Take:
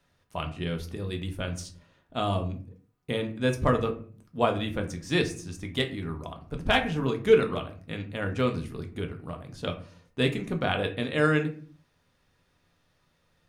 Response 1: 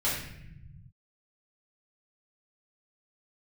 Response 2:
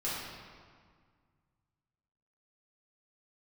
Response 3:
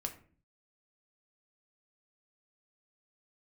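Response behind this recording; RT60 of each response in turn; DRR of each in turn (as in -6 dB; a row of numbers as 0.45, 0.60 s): 3; 0.75, 1.8, 0.45 s; -8.0, -10.0, 4.0 dB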